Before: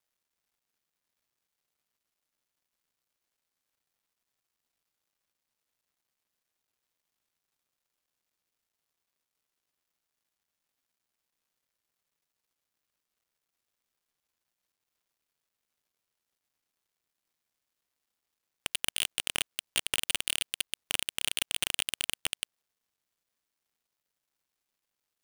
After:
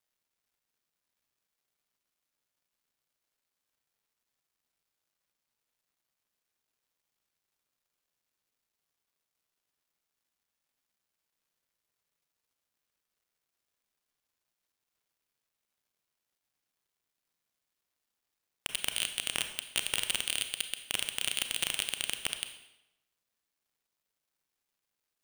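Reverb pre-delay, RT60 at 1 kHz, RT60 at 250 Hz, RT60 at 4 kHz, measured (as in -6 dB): 28 ms, 0.90 s, 0.90 s, 0.80 s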